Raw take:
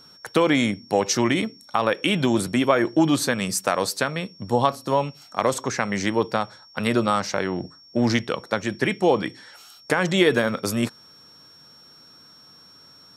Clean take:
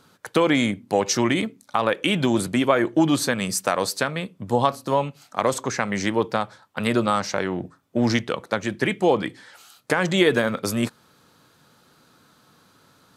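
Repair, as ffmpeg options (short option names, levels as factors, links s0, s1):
-af "bandreject=f=5500:w=30"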